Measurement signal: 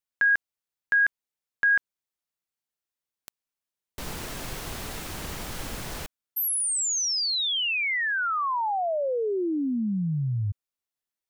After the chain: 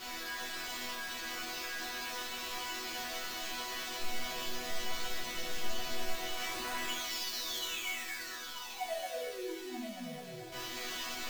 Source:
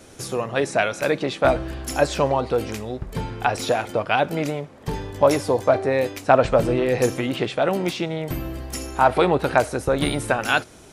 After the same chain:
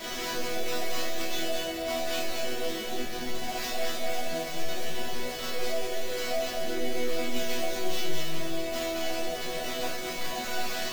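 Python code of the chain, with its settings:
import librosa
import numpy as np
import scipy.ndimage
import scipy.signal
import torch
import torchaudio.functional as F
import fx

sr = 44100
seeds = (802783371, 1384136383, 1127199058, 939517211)

y = np.sign(x) * np.sqrt(np.mean(np.square(x)))
y = fx.low_shelf(y, sr, hz=95.0, db=-12.0)
y = fx.fixed_phaser(y, sr, hz=300.0, stages=6)
y = y + 10.0 ** (-3.5 / 20.0) * np.pad(y, (int(226 * sr / 1000.0), 0))[:len(y)]
y = fx.room_shoebox(y, sr, seeds[0], volume_m3=490.0, walls='furnished', distance_m=2.8)
y = fx.sample_hold(y, sr, seeds[1], rate_hz=9900.0, jitter_pct=20)
y = fx.resonator_bank(y, sr, root=59, chord='sus4', decay_s=0.46)
y = y * librosa.db_to_amplitude(6.5)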